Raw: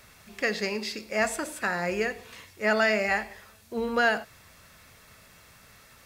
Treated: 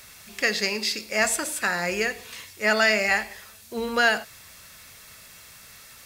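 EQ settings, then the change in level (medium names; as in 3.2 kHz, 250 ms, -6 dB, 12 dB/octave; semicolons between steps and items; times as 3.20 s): treble shelf 2.2 kHz +11 dB; 0.0 dB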